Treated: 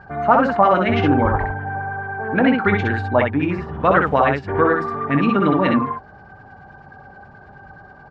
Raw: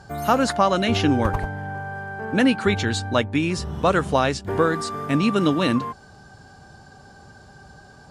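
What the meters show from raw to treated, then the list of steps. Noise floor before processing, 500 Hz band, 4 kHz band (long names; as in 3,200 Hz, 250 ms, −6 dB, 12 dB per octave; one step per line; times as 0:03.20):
−48 dBFS, +4.0 dB, −6.5 dB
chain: auto-filter low-pass sine 9.4 Hz 770–2,200 Hz
on a send: ambience of single reflections 21 ms −11.5 dB, 64 ms −3.5 dB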